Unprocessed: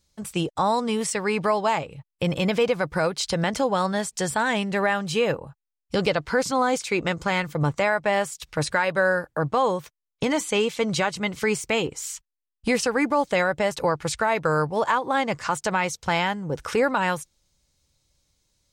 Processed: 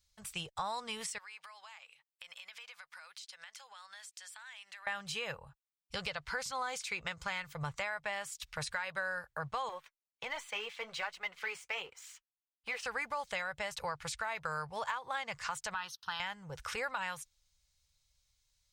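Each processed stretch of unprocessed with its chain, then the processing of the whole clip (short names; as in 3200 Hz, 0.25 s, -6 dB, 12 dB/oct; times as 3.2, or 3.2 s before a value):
1.18–4.87 HPF 1300 Hz + compressor 8:1, threshold -40 dBFS
9.69–12.85 three-band isolator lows -21 dB, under 290 Hz, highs -13 dB, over 3300 Hz + sample leveller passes 1 + flange 1.3 Hz, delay 2.3 ms, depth 6.4 ms, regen -45%
15.74–16.2 HPF 260 Hz + fixed phaser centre 2200 Hz, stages 6
whole clip: passive tone stack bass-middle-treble 10-0-10; compressor, threshold -32 dBFS; bell 9800 Hz -7 dB 2.4 oct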